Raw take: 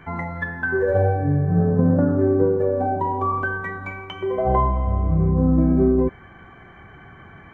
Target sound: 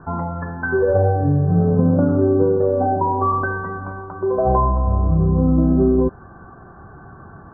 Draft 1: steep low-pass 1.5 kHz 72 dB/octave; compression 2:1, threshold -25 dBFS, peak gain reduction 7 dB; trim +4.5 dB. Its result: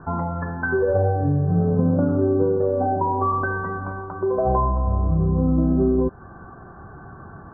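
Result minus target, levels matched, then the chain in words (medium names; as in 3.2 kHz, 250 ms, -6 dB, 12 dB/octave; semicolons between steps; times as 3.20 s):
compression: peak gain reduction +3.5 dB
steep low-pass 1.5 kHz 72 dB/octave; compression 2:1, threshold -18 dBFS, peak gain reduction 3.5 dB; trim +4.5 dB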